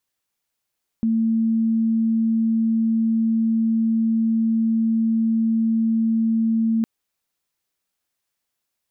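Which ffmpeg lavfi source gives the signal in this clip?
-f lavfi -i "aevalsrc='0.15*sin(2*PI*225*t)':d=5.81:s=44100"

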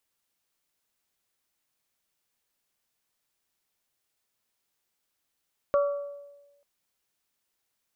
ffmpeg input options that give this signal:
-f lavfi -i "aevalsrc='0.119*pow(10,-3*t/1.15)*sin(2*PI*571*t)+0.0473*pow(10,-3*t/0.708)*sin(2*PI*1142*t)+0.0188*pow(10,-3*t/0.623)*sin(2*PI*1370.4*t)':d=0.89:s=44100"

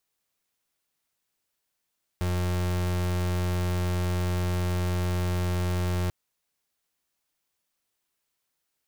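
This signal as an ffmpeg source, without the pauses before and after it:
-f lavfi -i "aevalsrc='0.0473*(2*lt(mod(89.4*t,1),0.36)-1)':d=3.89:s=44100"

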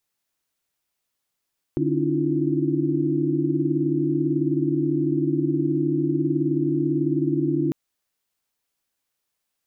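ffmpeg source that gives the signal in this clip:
-f lavfi -i "aevalsrc='0.0501*(sin(2*PI*146.83*t)+sin(2*PI*277.18*t)+sin(2*PI*311.13*t)+sin(2*PI*329.63*t)+sin(2*PI*349.23*t))':d=5.95:s=44100"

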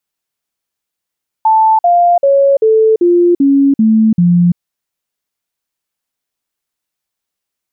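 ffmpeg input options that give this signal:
-f lavfi -i "aevalsrc='0.531*clip(min(mod(t,0.39),0.34-mod(t,0.39))/0.005,0,1)*sin(2*PI*880*pow(2,-floor(t/0.39)/3)*mod(t,0.39))':d=3.12:s=44100"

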